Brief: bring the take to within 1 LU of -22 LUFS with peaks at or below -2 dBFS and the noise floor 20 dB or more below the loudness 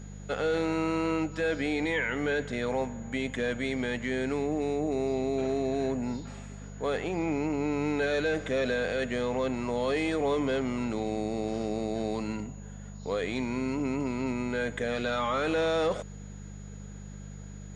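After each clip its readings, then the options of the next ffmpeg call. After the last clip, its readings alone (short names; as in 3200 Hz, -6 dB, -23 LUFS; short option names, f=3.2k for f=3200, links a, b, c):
hum 50 Hz; harmonics up to 200 Hz; hum level -41 dBFS; steady tone 6800 Hz; tone level -56 dBFS; loudness -30.0 LUFS; peak -18.5 dBFS; loudness target -22.0 LUFS
-> -af "bandreject=f=50:t=h:w=4,bandreject=f=100:t=h:w=4,bandreject=f=150:t=h:w=4,bandreject=f=200:t=h:w=4"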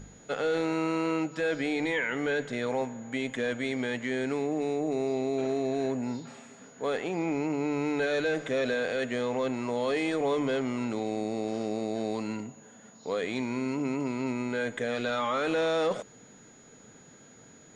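hum none; steady tone 6800 Hz; tone level -56 dBFS
-> -af "bandreject=f=6.8k:w=30"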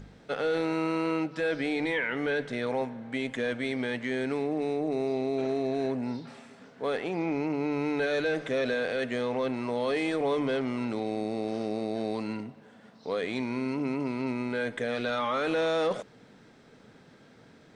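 steady tone none; loudness -30.5 LUFS; peak -19.5 dBFS; loudness target -22.0 LUFS
-> -af "volume=8.5dB"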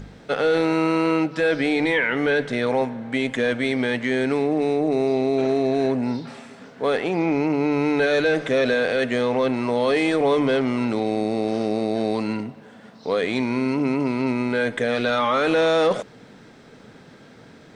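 loudness -22.0 LUFS; peak -11.0 dBFS; noise floor -47 dBFS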